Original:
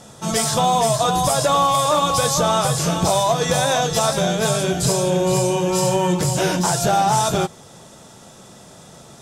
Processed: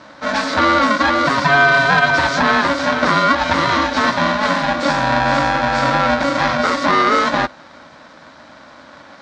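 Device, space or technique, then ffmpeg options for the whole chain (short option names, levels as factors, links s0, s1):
ring modulator pedal into a guitar cabinet: -af "aeval=exprs='val(0)*sgn(sin(2*PI*420*n/s))':c=same,highpass=100,equalizer=f=110:t=q:w=4:g=-10,equalizer=f=200:t=q:w=4:g=-5,equalizer=f=400:t=q:w=4:g=-8,equalizer=f=1500:t=q:w=4:g=5,equalizer=f=2900:t=q:w=4:g=-8,lowpass=f=4300:w=0.5412,lowpass=f=4300:w=1.3066,volume=1.58"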